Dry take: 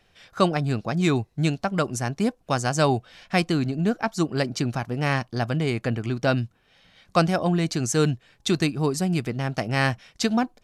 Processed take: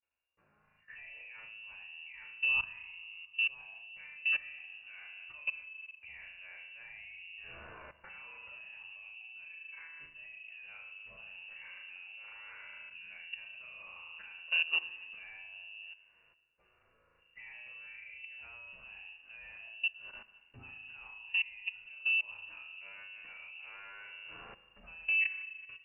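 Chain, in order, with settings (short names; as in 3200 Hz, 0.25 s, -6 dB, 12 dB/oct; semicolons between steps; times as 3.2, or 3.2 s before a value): notches 50/100/150/200/250/300/350 Hz; gate with hold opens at -47 dBFS; AGC gain up to 10.5 dB; limiter -19.5 dBFS, peak gain reduction 18 dB; time stretch by phase-locked vocoder 1.8×; flutter echo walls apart 4.7 m, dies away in 0.55 s; level quantiser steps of 21 dB; Schroeder reverb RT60 1.5 s, combs from 25 ms, DRR 15.5 dB; speed mistake 45 rpm record played at 33 rpm; inverted band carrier 2800 Hz; gain -8 dB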